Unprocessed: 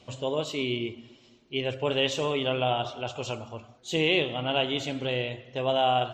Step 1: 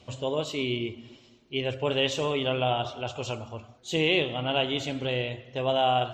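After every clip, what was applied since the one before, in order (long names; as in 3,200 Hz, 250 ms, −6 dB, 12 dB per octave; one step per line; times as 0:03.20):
parametric band 77 Hz +7 dB 0.77 octaves
reversed playback
upward compression, threshold −43 dBFS
reversed playback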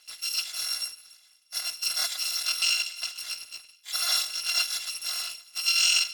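samples in bit-reversed order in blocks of 256 samples
resonant band-pass 3,800 Hz, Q 1.2
level +6 dB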